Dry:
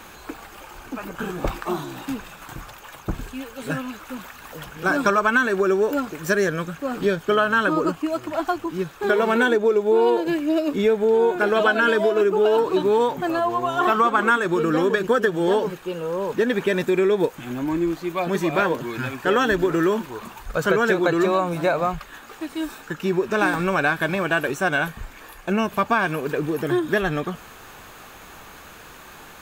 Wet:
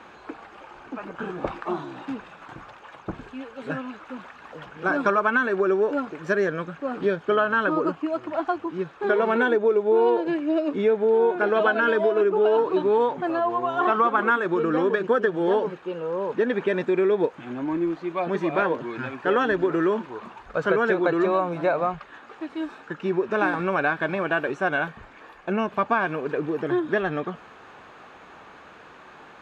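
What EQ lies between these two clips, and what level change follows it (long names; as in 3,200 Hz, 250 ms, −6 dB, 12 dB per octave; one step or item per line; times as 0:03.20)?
high-pass filter 320 Hz 6 dB per octave
head-to-tape spacing loss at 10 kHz 29 dB
+1.5 dB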